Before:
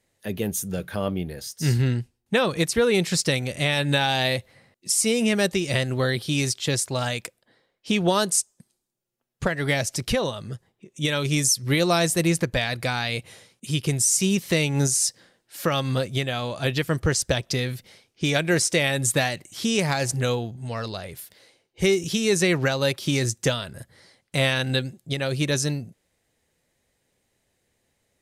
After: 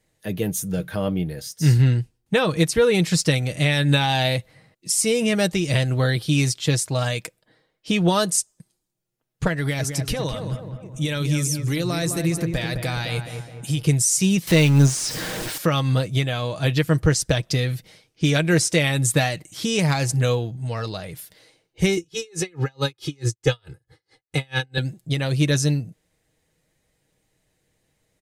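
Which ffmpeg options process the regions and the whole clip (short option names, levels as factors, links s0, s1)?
-filter_complex "[0:a]asettb=1/sr,asplit=3[s0][s1][s2];[s0]atrim=end=9.584[s3];[s1]atrim=start=9.58:end=13.83,asetpts=PTS-STARTPTS,afade=t=in:d=0.004:c=qsin,afade=t=out:st=4.246:d=0.004:c=qsin,highshelf=f=8800:g=7,acompressor=threshold=0.0631:ratio=4:attack=3.2:release=140:knee=1:detection=peak,asplit=2[s4][s5];[s5]adelay=210,lowpass=f=1600:p=1,volume=0.473,asplit=2[s6][s7];[s7]adelay=210,lowpass=f=1600:p=1,volume=0.54,asplit=2[s8][s9];[s9]adelay=210,lowpass=f=1600:p=1,volume=0.54,asplit=2[s10][s11];[s11]adelay=210,lowpass=f=1600:p=1,volume=0.54,asplit=2[s12][s13];[s13]adelay=210,lowpass=f=1600:p=1,volume=0.54,asplit=2[s14][s15];[s15]adelay=210,lowpass=f=1600:p=1,volume=0.54,asplit=2[s16][s17];[s17]adelay=210,lowpass=f=1600:p=1,volume=0.54[s18];[s4][s6][s8][s10][s12][s14][s16][s18]amix=inputs=8:normalize=0,atrim=end_sample=187425[s19];[s2]atrim=start=13.826[s20];[s3][s19]acrossfade=d=0.004:c1=hsin:c2=qsin[s21];[s21][s20]acrossfade=d=0.004:c1=qsin:c2=hsin,asettb=1/sr,asplit=3[s22][s23][s24];[s22]atrim=end=14.474[s25];[s23]atrim=start=14.47:end=15.58,asetpts=PTS-STARTPTS,afade=t=in:d=0.004:c=qsin,afade=t=out:st=1.106:d=0.004:c=qsin,aeval=exprs='val(0)+0.5*0.0596*sgn(val(0))':c=same,acrossover=split=5200[s26][s27];[s27]acompressor=threshold=0.0316:ratio=4:attack=1:release=60[s28];[s26][s28]amix=inputs=2:normalize=0[s29];[s24]atrim=start=15.576[s30];[s25][s29]acrossfade=d=0.004:c1=hsin:c2=qsin[s31];[s31][s30]acrossfade=d=0.004:c1=qsin:c2=hsin,asettb=1/sr,asplit=3[s32][s33][s34];[s32]atrim=end=21.974[s35];[s33]atrim=start=21.97:end=24.78,asetpts=PTS-STARTPTS,afade=t=in:d=0.004:c=qsin,afade=t=out:st=2.806:d=0.004:c=qsin,highshelf=f=9500:g=-9.5,aecho=1:1:2.4:1,atrim=end_sample=123921,aeval=exprs='val(0)*pow(10,-39*(0.5-0.5*cos(2*PI*4.6*n/s))/20)':c=same[s36];[s34]atrim=start=24.776[s37];[s35][s36]acrossfade=d=0.004:c1=hsin:c2=qsin[s38];[s38][s37]acrossfade=d=0.004:c1=qsin:c2=hsin,lowshelf=f=200:g=6,aecho=1:1:6.4:0.41"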